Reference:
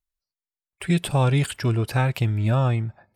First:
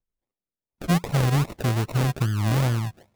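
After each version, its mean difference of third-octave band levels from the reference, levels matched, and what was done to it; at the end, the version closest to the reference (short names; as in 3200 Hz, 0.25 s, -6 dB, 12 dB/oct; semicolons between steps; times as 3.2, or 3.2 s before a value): 8.5 dB: LPF 7000 Hz 24 dB/oct; dynamic EQ 170 Hz, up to +4 dB, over -31 dBFS, Q 1.4; in parallel at +3 dB: compressor, threshold -27 dBFS, peak gain reduction 13.5 dB; on the sum: decimation with a swept rate 39×, swing 60% 2.5 Hz; gain -6.5 dB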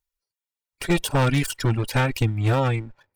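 4.5 dB: minimum comb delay 2.1 ms; reverb removal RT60 0.79 s; low shelf 470 Hz -3.5 dB; wavefolder -18.5 dBFS; gain +5.5 dB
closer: second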